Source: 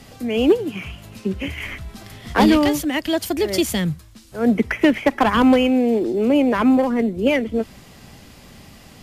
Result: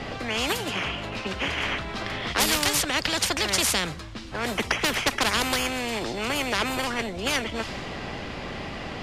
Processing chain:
low-pass that shuts in the quiet parts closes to 2,800 Hz, open at −10.5 dBFS
every bin compressed towards the loudest bin 4 to 1
level −1 dB

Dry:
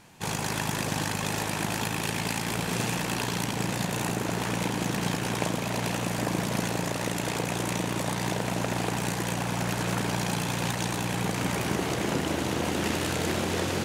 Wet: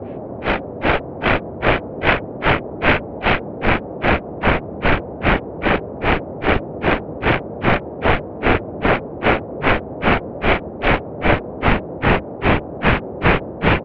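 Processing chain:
loose part that buzzes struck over −30 dBFS, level −26 dBFS
delay that swaps between a low-pass and a high-pass 366 ms, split 1,600 Hz, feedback 55%, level −7 dB
dynamic equaliser 100 Hz, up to −7 dB, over −46 dBFS, Q 0.96
pitch-shifted copies added −7 semitones −3 dB, −3 semitones −5 dB
automatic gain control gain up to 13.5 dB
granular cloud 206 ms, grains 2.5 per second, spray 37 ms, pitch spread up and down by 0 semitones
single-sideband voice off tune −200 Hz 160–3,100 Hz
noise in a band 61–630 Hz −37 dBFS
low-shelf EQ 160 Hz −3 dB
boost into a limiter +10.5 dB
level −2.5 dB

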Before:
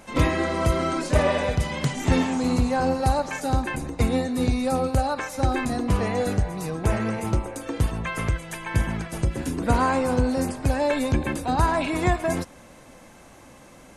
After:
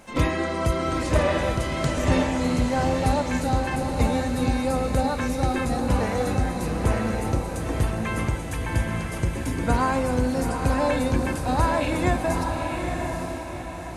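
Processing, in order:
bit-depth reduction 12 bits, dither none
feedback delay with all-pass diffusion 878 ms, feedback 45%, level −4 dB
level −1.5 dB

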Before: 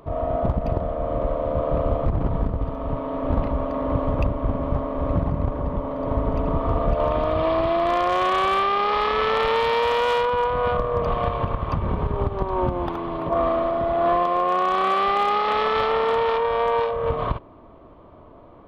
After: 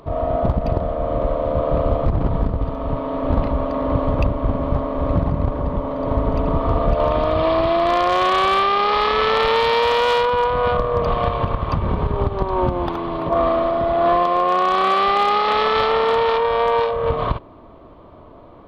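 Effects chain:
parametric band 4,300 Hz +5.5 dB 0.73 octaves
level +3.5 dB

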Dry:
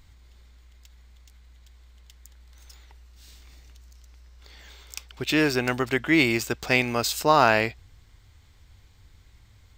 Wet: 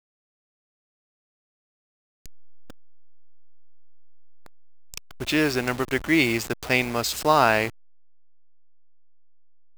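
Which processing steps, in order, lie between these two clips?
hold until the input has moved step −31 dBFS

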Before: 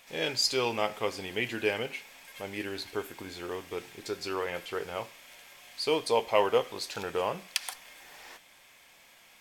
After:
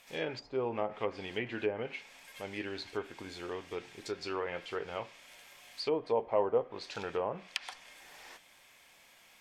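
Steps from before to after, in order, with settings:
treble cut that deepens with the level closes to 850 Hz, closed at −24.5 dBFS
level −3 dB

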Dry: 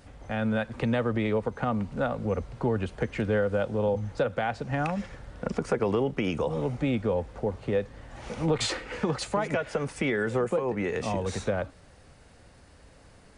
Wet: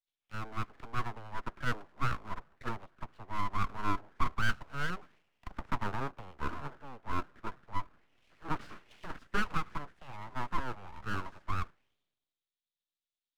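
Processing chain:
spectral tilt −1.5 dB per octave
envelope filter 770–2,100 Hz, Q 3.4, down, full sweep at −26.5 dBFS
dynamic equaliser 540 Hz, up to +4 dB, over −46 dBFS, Q 2.9
full-wave rectification
multiband upward and downward expander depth 100%
level +1 dB

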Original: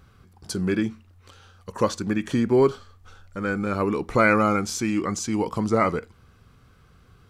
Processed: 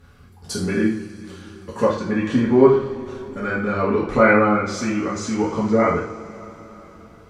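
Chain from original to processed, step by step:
treble cut that deepens with the level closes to 2,400 Hz, closed at −19 dBFS
coupled-rooms reverb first 0.46 s, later 4.7 s, from −22 dB, DRR −7 dB
speech leveller 2 s
level −4.5 dB

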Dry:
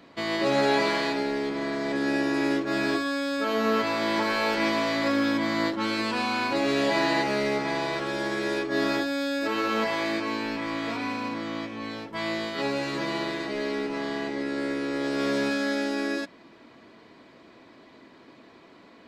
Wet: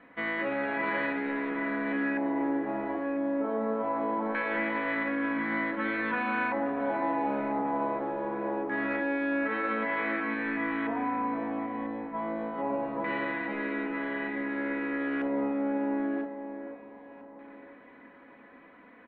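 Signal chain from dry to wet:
Butterworth low-pass 3,900 Hz 48 dB per octave
mains-hum notches 60/120/180/240/300/360/420 Hz
comb filter 4 ms, depth 53%
brickwall limiter −19 dBFS, peak gain reduction 6.5 dB
auto-filter low-pass square 0.23 Hz 880–1,800 Hz
delay that swaps between a low-pass and a high-pass 498 ms, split 1,500 Hz, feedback 55%, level −7.5 dB
level −5.5 dB

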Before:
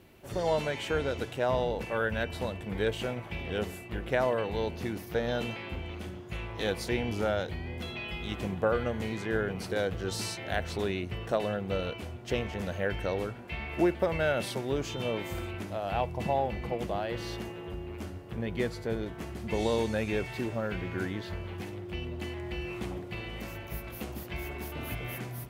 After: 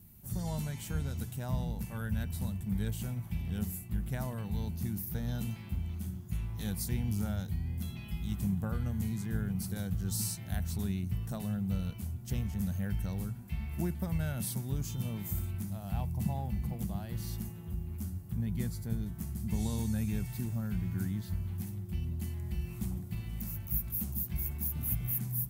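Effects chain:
drawn EQ curve 200 Hz 0 dB, 300 Hz −16 dB, 530 Hz −25 dB, 790 Hz −17 dB, 2,800 Hz −19 dB, 15,000 Hz +11 dB
level +4 dB

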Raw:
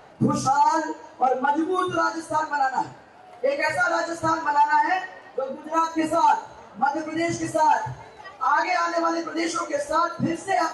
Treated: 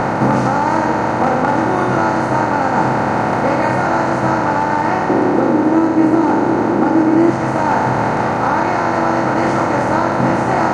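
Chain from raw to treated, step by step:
compressor on every frequency bin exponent 0.2
0:05.09–0:07.30: parametric band 330 Hz +14.5 dB 0.79 octaves
speech leveller 0.5 s
spectral tilt −2.5 dB per octave
level −5.5 dB

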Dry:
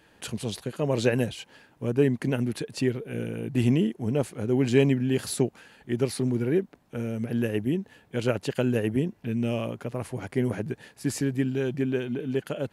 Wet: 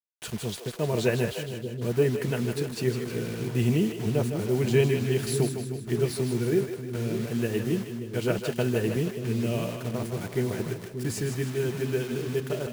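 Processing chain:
notch comb filter 270 Hz
bit reduction 7 bits
echo with a time of its own for lows and highs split 400 Hz, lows 584 ms, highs 156 ms, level −7 dB

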